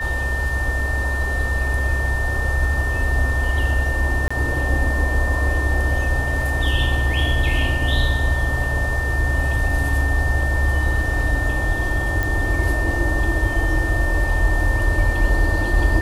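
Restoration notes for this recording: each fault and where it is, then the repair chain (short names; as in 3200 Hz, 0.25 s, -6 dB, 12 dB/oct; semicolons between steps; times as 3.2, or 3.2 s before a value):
tone 1800 Hz -24 dBFS
4.28–4.3 gap 25 ms
12.23 pop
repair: de-click; notch 1800 Hz, Q 30; interpolate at 4.28, 25 ms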